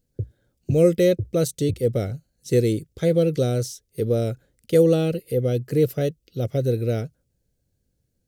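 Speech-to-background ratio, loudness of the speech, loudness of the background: 13.5 dB, −22.5 LKFS, −36.0 LKFS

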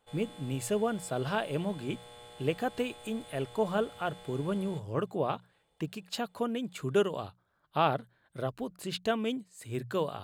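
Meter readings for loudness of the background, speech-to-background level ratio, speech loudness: −50.5 LKFS, 17.0 dB, −33.5 LKFS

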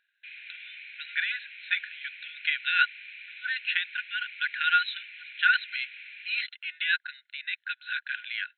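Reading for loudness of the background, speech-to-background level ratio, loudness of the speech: −42.5 LKFS, 14.0 dB, −28.5 LKFS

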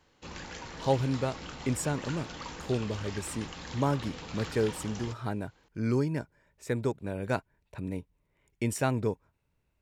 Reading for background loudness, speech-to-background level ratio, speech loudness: −42.0 LKFS, 9.0 dB, −33.0 LKFS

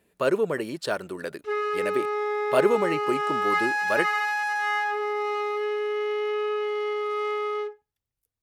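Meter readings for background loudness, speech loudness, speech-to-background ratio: −26.5 LKFS, −28.0 LKFS, −1.5 dB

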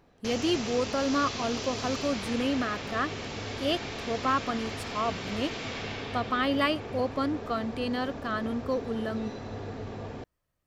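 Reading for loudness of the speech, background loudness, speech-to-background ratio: −31.0 LKFS, −36.5 LKFS, 5.5 dB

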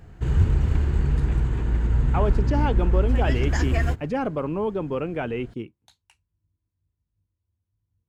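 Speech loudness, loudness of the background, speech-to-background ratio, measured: −28.5 LKFS, −23.5 LKFS, −5.0 dB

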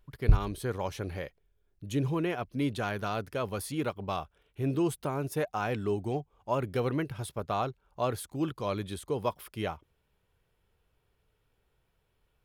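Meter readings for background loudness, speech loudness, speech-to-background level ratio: −29.0 LKFS, −33.5 LKFS, −4.5 dB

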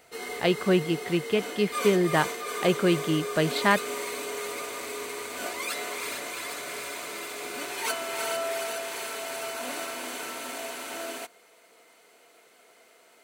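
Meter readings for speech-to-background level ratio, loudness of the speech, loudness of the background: 7.0 dB, −26.0 LKFS, −33.0 LKFS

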